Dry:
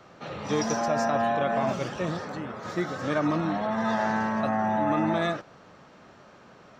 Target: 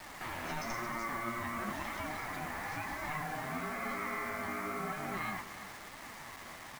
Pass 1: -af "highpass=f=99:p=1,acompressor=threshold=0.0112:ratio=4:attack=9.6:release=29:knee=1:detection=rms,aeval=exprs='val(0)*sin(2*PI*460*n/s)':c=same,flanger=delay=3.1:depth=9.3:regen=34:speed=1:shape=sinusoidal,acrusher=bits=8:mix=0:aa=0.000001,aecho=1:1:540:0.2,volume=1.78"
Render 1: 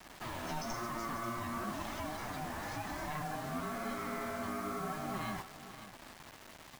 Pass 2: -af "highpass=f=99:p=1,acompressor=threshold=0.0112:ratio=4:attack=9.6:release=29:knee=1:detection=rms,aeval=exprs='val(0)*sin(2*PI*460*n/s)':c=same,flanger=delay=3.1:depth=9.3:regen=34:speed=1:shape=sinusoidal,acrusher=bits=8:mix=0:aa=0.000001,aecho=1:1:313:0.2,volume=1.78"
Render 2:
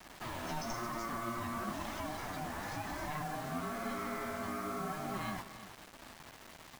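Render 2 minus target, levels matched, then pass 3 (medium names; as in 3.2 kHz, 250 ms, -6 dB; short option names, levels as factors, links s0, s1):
2 kHz band -4.5 dB
-af "highpass=f=99:p=1,equalizer=f=1600:t=o:w=0.81:g=12.5,acompressor=threshold=0.0112:ratio=4:attack=9.6:release=29:knee=1:detection=rms,aeval=exprs='val(0)*sin(2*PI*460*n/s)':c=same,flanger=delay=3.1:depth=9.3:regen=34:speed=1:shape=sinusoidal,acrusher=bits=8:mix=0:aa=0.000001,aecho=1:1:313:0.2,volume=1.78"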